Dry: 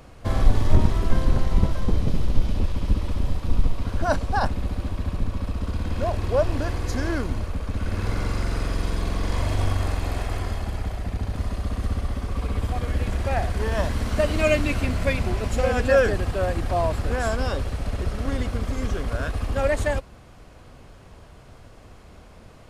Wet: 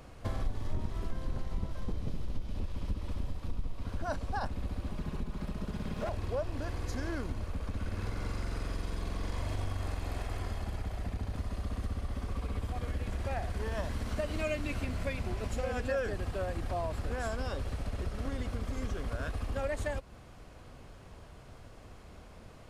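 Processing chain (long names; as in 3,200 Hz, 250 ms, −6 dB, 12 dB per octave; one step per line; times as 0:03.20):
0:04.91–0:06.09: lower of the sound and its delayed copy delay 4.8 ms
downward compressor 3 to 1, threshold −28 dBFS, peak gain reduction 14.5 dB
level −4.5 dB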